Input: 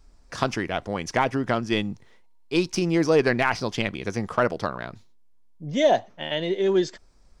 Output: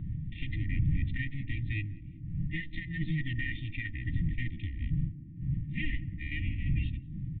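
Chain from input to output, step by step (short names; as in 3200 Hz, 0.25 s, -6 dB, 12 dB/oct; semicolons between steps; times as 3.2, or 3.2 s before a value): minimum comb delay 2.5 ms; wind noise 210 Hz -31 dBFS; FFT band-reject 330–1800 Hz; dynamic EQ 500 Hz, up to -7 dB, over -45 dBFS, Q 0.87; limiter -19.5 dBFS, peak gain reduction 11 dB; formant shift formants -5 st; air absorption 390 m; on a send: narrowing echo 0.189 s, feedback 83%, band-pass 320 Hz, level -12 dB; on the sum: downsampling 8000 Hz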